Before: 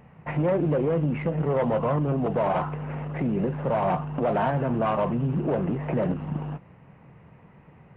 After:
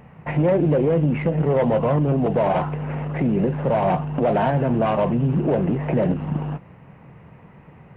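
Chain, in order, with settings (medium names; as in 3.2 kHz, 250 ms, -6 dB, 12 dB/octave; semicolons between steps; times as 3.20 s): dynamic bell 1.2 kHz, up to -6 dB, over -44 dBFS, Q 2.1; trim +5.5 dB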